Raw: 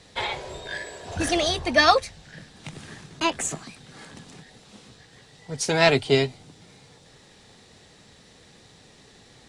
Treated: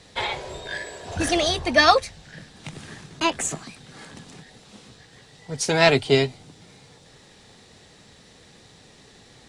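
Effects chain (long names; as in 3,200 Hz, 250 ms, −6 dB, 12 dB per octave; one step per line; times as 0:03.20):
0:05.53–0:06.26: surface crackle 60 per second −49 dBFS
level +1.5 dB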